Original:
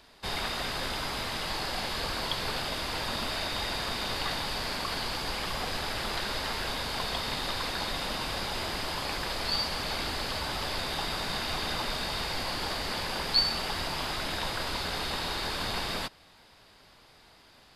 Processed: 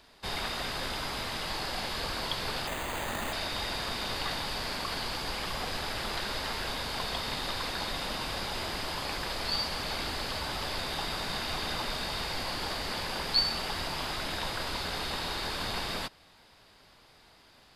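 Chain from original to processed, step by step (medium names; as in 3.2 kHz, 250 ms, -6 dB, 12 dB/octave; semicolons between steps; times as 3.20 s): 2.67–3.33 s: careless resampling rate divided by 8×, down none, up hold; trim -1.5 dB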